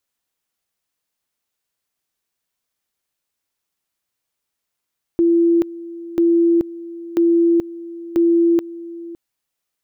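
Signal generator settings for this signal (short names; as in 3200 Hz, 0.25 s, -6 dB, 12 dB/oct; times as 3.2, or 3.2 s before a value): two-level tone 338 Hz -11 dBFS, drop 18 dB, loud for 0.43 s, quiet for 0.56 s, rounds 4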